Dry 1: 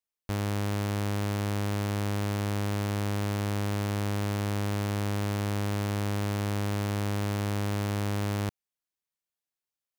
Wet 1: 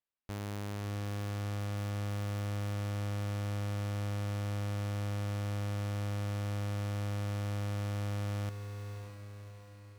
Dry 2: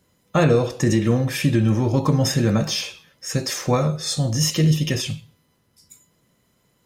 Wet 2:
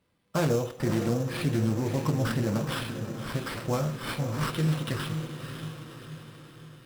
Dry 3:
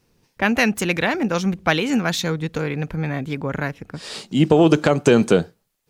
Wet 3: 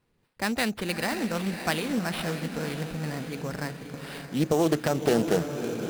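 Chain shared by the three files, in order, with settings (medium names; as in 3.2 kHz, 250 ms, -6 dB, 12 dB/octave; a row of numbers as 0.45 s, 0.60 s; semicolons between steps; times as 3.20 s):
echo that smears into a reverb 582 ms, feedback 53%, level -8 dB; sample-rate reducer 6.6 kHz, jitter 0%; loudspeaker Doppler distortion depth 0.3 ms; trim -9 dB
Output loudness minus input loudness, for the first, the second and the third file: -6.5 LU, -9.0 LU, -8.5 LU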